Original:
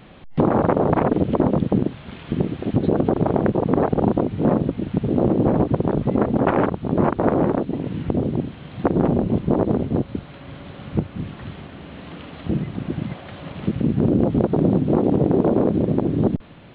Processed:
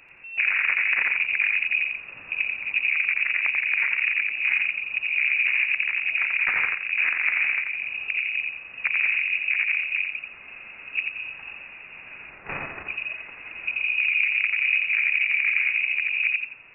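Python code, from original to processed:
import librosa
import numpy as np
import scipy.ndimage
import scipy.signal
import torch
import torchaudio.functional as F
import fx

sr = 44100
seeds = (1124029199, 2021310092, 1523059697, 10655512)

y = fx.envelope_flatten(x, sr, power=0.1, at=(12.29, 12.86), fade=0.02)
y = fx.freq_invert(y, sr, carrier_hz=2700)
y = fx.echo_feedback(y, sr, ms=87, feedback_pct=29, wet_db=-4)
y = F.gain(torch.from_numpy(y), -6.5).numpy()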